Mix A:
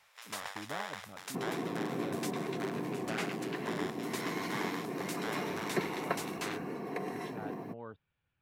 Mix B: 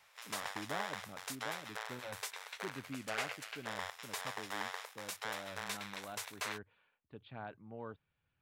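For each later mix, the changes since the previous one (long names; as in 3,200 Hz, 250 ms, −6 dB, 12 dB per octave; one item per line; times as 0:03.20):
second sound: muted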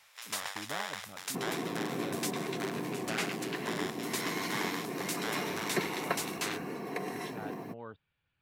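second sound: unmuted
master: add high-shelf EQ 2,200 Hz +7.5 dB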